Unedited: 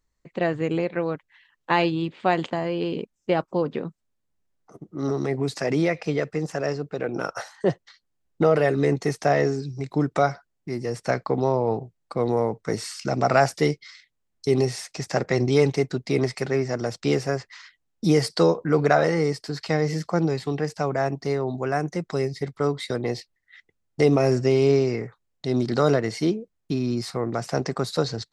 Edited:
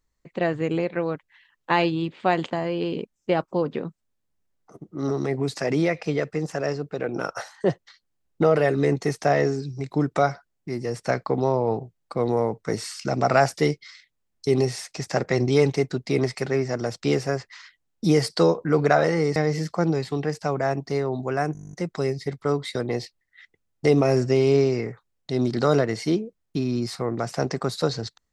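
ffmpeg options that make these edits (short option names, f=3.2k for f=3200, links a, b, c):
-filter_complex "[0:a]asplit=12[a][b][c][d][e][f][g][h][i][j][k][l];[a]atrim=end=19.362[m];[b]atrim=start=19.708:end=21.902[n];[c]atrim=start=21.878:end=21.902[o];[d]atrim=start=21.878:end=21.902[p];[e]atrim=start=21.878:end=21.902[q];[f]atrim=start=21.878:end=21.902[r];[g]atrim=start=21.878:end=21.902[s];[h]atrim=start=21.878:end=21.902[t];[i]atrim=start=21.878:end=21.902[u];[j]atrim=start=21.878:end=21.902[v];[k]atrim=start=21.878:end=21.902[w];[l]atrim=start=21.878[x];[m][n]acrossfade=d=0.004:c1=hsin:c2=hsin[y];[y][o]acrossfade=d=0.004:c1=hsin:c2=hsin[z];[z][p]acrossfade=d=0.004:c1=hsin:c2=hsin[aa];[aa][q]acrossfade=d=0.004:c1=hsin:c2=hsin[ab];[ab][r]acrossfade=d=0.004:c1=hsin:c2=hsin[ac];[ac][s]acrossfade=d=0.004:c1=hsin:c2=hsin[ad];[ad][t]acrossfade=d=0.004:c1=hsin:c2=hsin[ae];[ae][u]acrossfade=d=0.004:c1=hsin:c2=hsin[af];[af][v]acrossfade=d=0.004:c1=hsin:c2=hsin[ag];[ag][w]acrossfade=d=0.004:c1=hsin:c2=hsin[ah];[ah][x]acrossfade=d=0.004:c1=hsin:c2=hsin"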